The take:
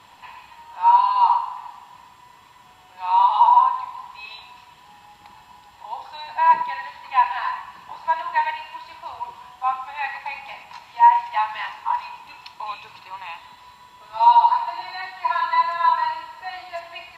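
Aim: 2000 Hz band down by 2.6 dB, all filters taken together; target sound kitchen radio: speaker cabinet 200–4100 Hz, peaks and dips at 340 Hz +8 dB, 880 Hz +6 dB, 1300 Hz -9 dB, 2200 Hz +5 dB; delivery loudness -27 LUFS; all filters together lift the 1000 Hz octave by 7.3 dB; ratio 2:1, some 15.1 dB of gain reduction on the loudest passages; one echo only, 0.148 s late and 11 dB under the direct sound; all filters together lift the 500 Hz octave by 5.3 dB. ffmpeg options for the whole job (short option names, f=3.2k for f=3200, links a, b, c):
-af "equalizer=f=500:t=o:g=4.5,equalizer=f=1k:t=o:g=4.5,equalizer=f=2k:t=o:g=-5.5,acompressor=threshold=-34dB:ratio=2,highpass=200,equalizer=f=340:t=q:w=4:g=8,equalizer=f=880:t=q:w=4:g=6,equalizer=f=1.3k:t=q:w=4:g=-9,equalizer=f=2.2k:t=q:w=4:g=5,lowpass=f=4.1k:w=0.5412,lowpass=f=4.1k:w=1.3066,aecho=1:1:148:0.282"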